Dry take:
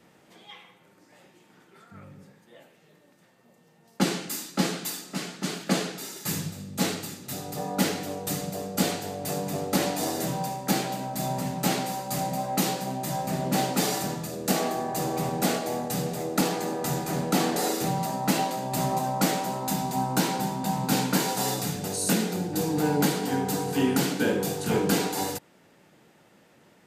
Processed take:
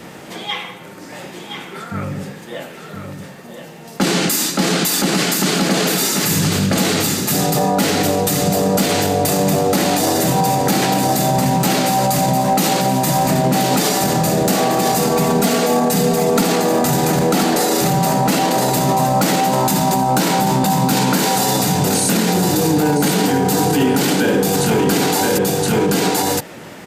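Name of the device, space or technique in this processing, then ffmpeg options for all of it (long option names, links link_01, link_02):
loud club master: -filter_complex "[0:a]asettb=1/sr,asplit=3[link_01][link_02][link_03];[link_01]atrim=end=14.974[link_04];[link_02]atrim=start=14.97:end=16.42,asetpts=PTS-STARTPTS,afade=type=in:duration=0.004:curve=qsin,afade=type=out:start_time=1.446:duration=0.004:curve=qsin,aecho=1:1:4.4:0.84,atrim=end_sample=63945[link_05];[link_03]atrim=start=16.416[link_06];[link_04][link_05]acrossfade=duration=0.004:curve1=hsin:curve2=qsin[link_07];[link_07][link_06]acrossfade=duration=0.004:curve1=qsin:curve2=hsin,aecho=1:1:1020:0.422,acompressor=threshold=-28dB:ratio=2,asoftclip=type=hard:threshold=-18.5dB,alimiter=level_in=29dB:limit=-1dB:release=50:level=0:latency=1,volume=-6.5dB"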